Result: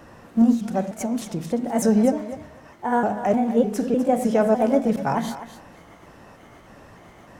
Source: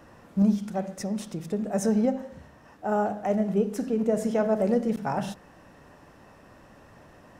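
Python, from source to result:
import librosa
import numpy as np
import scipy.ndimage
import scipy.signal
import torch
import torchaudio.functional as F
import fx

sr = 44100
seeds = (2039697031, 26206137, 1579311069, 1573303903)

y = fx.pitch_trill(x, sr, semitones=2.5, every_ms=303)
y = fx.echo_thinned(y, sr, ms=250, feedback_pct=18, hz=420.0, wet_db=-11.5)
y = F.gain(torch.from_numpy(y), 5.5).numpy()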